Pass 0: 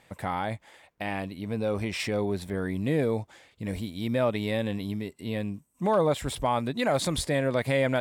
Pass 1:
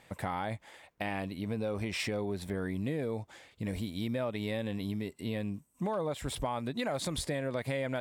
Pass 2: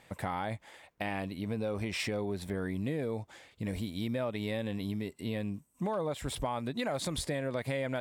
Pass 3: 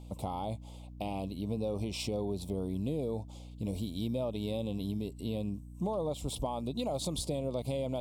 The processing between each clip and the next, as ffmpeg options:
ffmpeg -i in.wav -af "acompressor=threshold=-31dB:ratio=5" out.wav
ffmpeg -i in.wav -af anull out.wav
ffmpeg -i in.wav -af "asuperstop=centerf=1700:order=4:qfactor=0.83,aeval=exprs='val(0)+0.00501*(sin(2*PI*60*n/s)+sin(2*PI*2*60*n/s)/2+sin(2*PI*3*60*n/s)/3+sin(2*PI*4*60*n/s)/4+sin(2*PI*5*60*n/s)/5)':channel_layout=same" out.wav

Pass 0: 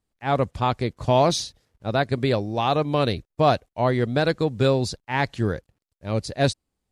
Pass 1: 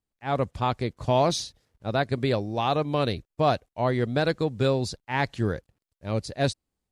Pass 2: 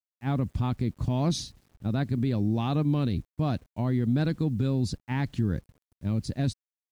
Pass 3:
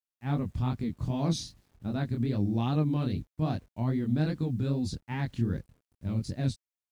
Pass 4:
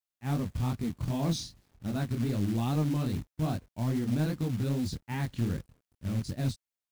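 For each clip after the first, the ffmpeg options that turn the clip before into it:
ffmpeg -i in.wav -af "dynaudnorm=framelen=190:gausssize=3:maxgain=6.5dB,volume=-8dB" out.wav
ffmpeg -i in.wav -af "lowshelf=frequency=360:width_type=q:width=1.5:gain=11,alimiter=limit=-14dB:level=0:latency=1:release=59,acrusher=bits=9:mix=0:aa=0.000001,volume=-3.5dB" out.wav
ffmpeg -i in.wav -af "flanger=delay=19.5:depth=6.8:speed=2.5" out.wav
ffmpeg -i in.wav -af "acrusher=bits=4:mode=log:mix=0:aa=0.000001,asoftclip=type=tanh:threshold=-19.5dB" out.wav

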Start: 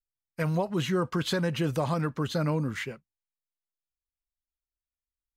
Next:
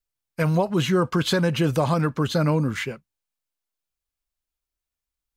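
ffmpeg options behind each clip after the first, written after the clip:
ffmpeg -i in.wav -af "bandreject=frequency=1900:width=21,volume=6.5dB" out.wav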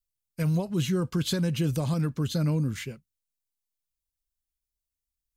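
ffmpeg -i in.wav -af "equalizer=frequency=1000:width=0.38:gain=-15" out.wav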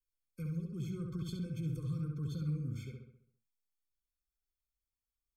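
ffmpeg -i in.wav -filter_complex "[0:a]acrossover=split=130[link_01][link_02];[link_02]acompressor=threshold=-50dB:ratio=2[link_03];[link_01][link_03]amix=inputs=2:normalize=0,asplit=2[link_04][link_05];[link_05]adelay=67,lowpass=frequency=3600:poles=1,volume=-3dB,asplit=2[link_06][link_07];[link_07]adelay=67,lowpass=frequency=3600:poles=1,volume=0.51,asplit=2[link_08][link_09];[link_09]adelay=67,lowpass=frequency=3600:poles=1,volume=0.51,asplit=2[link_10][link_11];[link_11]adelay=67,lowpass=frequency=3600:poles=1,volume=0.51,asplit=2[link_12][link_13];[link_13]adelay=67,lowpass=frequency=3600:poles=1,volume=0.51,asplit=2[link_14][link_15];[link_15]adelay=67,lowpass=frequency=3600:poles=1,volume=0.51,asplit=2[link_16][link_17];[link_17]adelay=67,lowpass=frequency=3600:poles=1,volume=0.51[link_18];[link_06][link_08][link_10][link_12][link_14][link_16][link_18]amix=inputs=7:normalize=0[link_19];[link_04][link_19]amix=inputs=2:normalize=0,afftfilt=real='re*eq(mod(floor(b*sr/1024/520),2),0)':imag='im*eq(mod(floor(b*sr/1024/520),2),0)':win_size=1024:overlap=0.75,volume=-6dB" out.wav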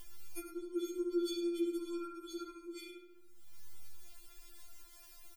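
ffmpeg -i in.wav -af "acompressor=mode=upward:threshold=-43dB:ratio=2.5,aecho=1:1:104:0.266,afftfilt=real='re*4*eq(mod(b,16),0)':imag='im*4*eq(mod(b,16),0)':win_size=2048:overlap=0.75,volume=11.5dB" out.wav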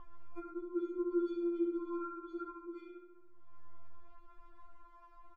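ffmpeg -i in.wav -af "lowpass=frequency=1100:width_type=q:width=6.5" out.wav

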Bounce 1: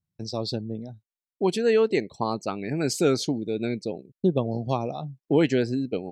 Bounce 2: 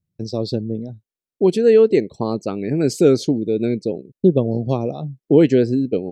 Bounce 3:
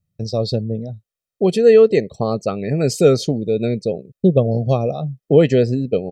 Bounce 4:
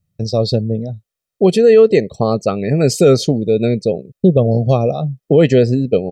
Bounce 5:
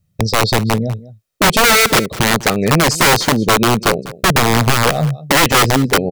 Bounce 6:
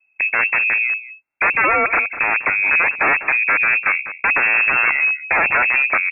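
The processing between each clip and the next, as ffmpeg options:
ffmpeg -i in.wav -af "lowshelf=frequency=630:width_type=q:width=1.5:gain=7" out.wav
ffmpeg -i in.wav -af "aecho=1:1:1.6:0.6,volume=2dB" out.wav
ffmpeg -i in.wav -af "alimiter=level_in=5.5dB:limit=-1dB:release=50:level=0:latency=1,volume=-1dB" out.wav
ffmpeg -i in.wav -filter_complex "[0:a]asplit=2[link_01][link_02];[link_02]acompressor=threshold=-20dB:ratio=10,volume=0dB[link_03];[link_01][link_03]amix=inputs=2:normalize=0,aeval=exprs='(mod(2*val(0)+1,2)-1)/2':channel_layout=same,aecho=1:1:199:0.133" out.wav
ffmpeg -i in.wav -filter_complex "[0:a]asplit=2[link_01][link_02];[link_02]aeval=exprs='0.596*sin(PI/2*2.24*val(0)/0.596)':channel_layout=same,volume=-7dB[link_03];[link_01][link_03]amix=inputs=2:normalize=0,lowpass=frequency=2300:width_type=q:width=0.5098,lowpass=frequency=2300:width_type=q:width=0.6013,lowpass=frequency=2300:width_type=q:width=0.9,lowpass=frequency=2300:width_type=q:width=2.563,afreqshift=-2700,volume=-8dB" out.wav

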